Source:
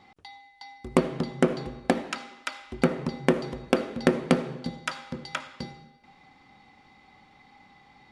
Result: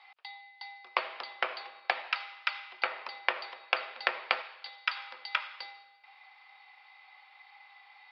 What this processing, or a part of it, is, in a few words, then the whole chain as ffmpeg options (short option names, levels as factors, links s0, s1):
musical greeting card: -filter_complex "[0:a]asettb=1/sr,asplit=3[s0][s1][s2];[s0]atrim=end=4.414[s3];[s1]atrim=start=4.41:end=4.97,asetpts=PTS-STARTPTS,afade=t=in:d=0.004:c=qsin,afade=t=out:st=0.556:d=0.004:c=qsin,highpass=f=1000:p=1[s4];[s2]atrim=start=4.966[s5];[s3][s4]acrossfade=d=0.004:c1=hsin:c2=qsin[s6];[s6][s5]acrossfade=d=0.004:c1=qsin:c2=hsin,aresample=11025,aresample=44100,highpass=f=790:w=0.5412,highpass=f=790:w=1.3066,equalizer=f=2500:t=o:w=0.56:g=6"